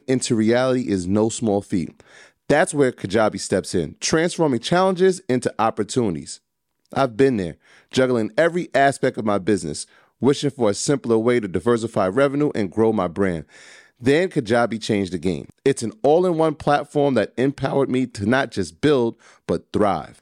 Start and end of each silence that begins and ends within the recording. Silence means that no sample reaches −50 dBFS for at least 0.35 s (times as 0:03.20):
0:06.38–0:06.86